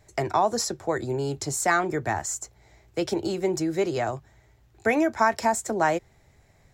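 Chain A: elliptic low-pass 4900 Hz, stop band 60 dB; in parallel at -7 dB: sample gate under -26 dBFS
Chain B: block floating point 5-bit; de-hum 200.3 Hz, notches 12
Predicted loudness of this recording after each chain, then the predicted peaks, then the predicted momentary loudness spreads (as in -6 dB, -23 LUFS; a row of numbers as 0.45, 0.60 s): -24.0, -26.0 LUFS; -5.0, -8.0 dBFS; 9, 9 LU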